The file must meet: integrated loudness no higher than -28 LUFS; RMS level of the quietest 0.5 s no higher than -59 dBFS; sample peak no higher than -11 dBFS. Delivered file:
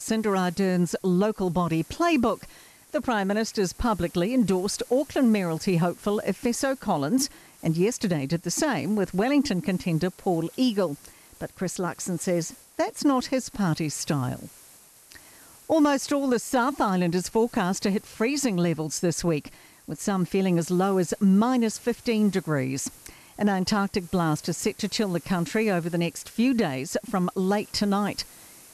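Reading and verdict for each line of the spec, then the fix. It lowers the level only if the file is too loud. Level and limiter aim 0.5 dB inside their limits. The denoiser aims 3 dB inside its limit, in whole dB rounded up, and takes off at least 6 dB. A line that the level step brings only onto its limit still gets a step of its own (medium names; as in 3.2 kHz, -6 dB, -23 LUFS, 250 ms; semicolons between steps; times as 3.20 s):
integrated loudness -25.5 LUFS: fail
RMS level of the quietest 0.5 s -52 dBFS: fail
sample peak -11.5 dBFS: pass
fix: noise reduction 7 dB, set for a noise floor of -52 dBFS; trim -3 dB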